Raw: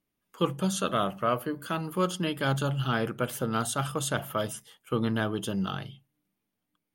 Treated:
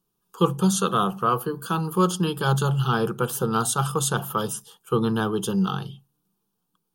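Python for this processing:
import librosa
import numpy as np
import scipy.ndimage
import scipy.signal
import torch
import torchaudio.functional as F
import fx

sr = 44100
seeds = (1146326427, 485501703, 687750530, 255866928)

y = fx.fixed_phaser(x, sr, hz=410.0, stages=8)
y = F.gain(torch.from_numpy(y), 8.5).numpy()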